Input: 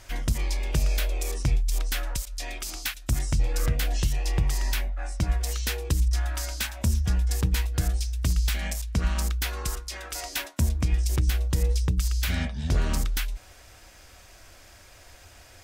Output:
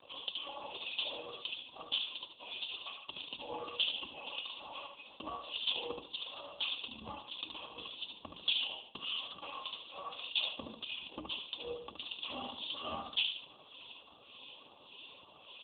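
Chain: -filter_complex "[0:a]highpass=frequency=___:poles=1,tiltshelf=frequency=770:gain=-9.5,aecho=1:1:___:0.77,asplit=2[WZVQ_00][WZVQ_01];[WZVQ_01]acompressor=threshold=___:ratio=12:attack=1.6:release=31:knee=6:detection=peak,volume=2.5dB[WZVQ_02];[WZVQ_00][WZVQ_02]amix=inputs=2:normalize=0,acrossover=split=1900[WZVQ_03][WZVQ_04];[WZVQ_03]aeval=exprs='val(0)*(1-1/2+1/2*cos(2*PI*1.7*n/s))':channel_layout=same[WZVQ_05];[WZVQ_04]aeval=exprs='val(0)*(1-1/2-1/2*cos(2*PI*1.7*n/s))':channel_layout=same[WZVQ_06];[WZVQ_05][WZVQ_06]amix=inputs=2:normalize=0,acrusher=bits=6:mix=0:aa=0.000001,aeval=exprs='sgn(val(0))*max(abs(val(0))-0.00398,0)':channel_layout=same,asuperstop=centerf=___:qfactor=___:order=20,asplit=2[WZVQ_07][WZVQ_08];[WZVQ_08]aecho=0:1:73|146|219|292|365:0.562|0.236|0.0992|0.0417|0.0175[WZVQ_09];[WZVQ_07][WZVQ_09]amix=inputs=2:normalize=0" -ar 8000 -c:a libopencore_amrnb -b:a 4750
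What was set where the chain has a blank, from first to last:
520, 3.6, -36dB, 1800, 1.4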